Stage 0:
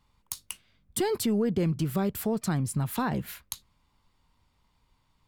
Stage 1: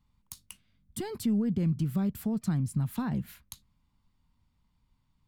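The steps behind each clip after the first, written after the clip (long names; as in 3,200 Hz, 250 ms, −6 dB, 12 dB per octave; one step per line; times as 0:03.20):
low shelf with overshoot 300 Hz +7.5 dB, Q 1.5
level −9 dB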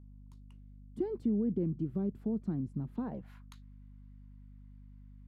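band-pass filter sweep 350 Hz → 1,700 Hz, 0:02.96–0:03.58
mains hum 50 Hz, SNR 15 dB
level +4.5 dB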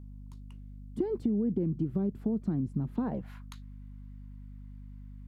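downward compressor 5 to 1, threshold −33 dBFS, peak gain reduction 6.5 dB
level +7 dB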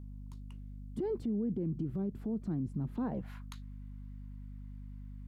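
brickwall limiter −28 dBFS, peak gain reduction 9 dB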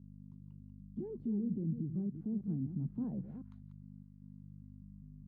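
delay that plays each chunk backwards 201 ms, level −9 dB
resonant band-pass 180 Hz, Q 1.5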